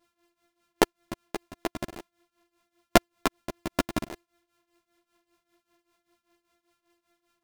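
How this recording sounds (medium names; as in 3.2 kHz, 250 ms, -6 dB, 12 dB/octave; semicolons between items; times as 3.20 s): a buzz of ramps at a fixed pitch in blocks of 128 samples; tremolo triangle 5.1 Hz, depth 90%; a shimmering, thickened sound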